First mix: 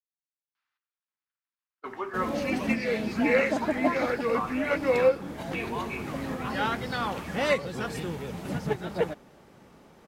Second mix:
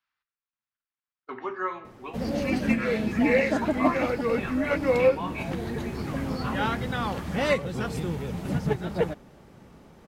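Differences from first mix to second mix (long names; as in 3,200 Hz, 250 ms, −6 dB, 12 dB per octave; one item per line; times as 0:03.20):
speech: entry −0.55 s
master: add low-shelf EQ 180 Hz +9.5 dB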